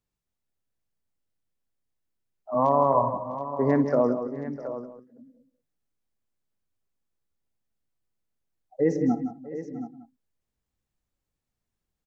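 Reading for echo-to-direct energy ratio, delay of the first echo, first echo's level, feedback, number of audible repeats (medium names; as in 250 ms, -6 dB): -6.0 dB, 58 ms, -16.0 dB, no regular repeats, 8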